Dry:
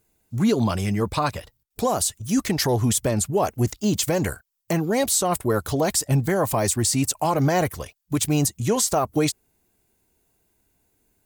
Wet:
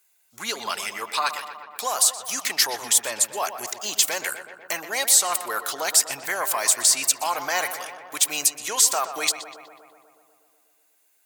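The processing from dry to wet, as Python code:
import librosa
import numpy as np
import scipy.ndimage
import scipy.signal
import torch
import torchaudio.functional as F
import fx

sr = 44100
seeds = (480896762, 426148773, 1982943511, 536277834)

y = scipy.signal.sosfilt(scipy.signal.butter(2, 1300.0, 'highpass', fs=sr, output='sos'), x)
y = fx.echo_filtered(y, sr, ms=123, feedback_pct=73, hz=2800.0, wet_db=-10)
y = y * librosa.db_to_amplitude(5.5)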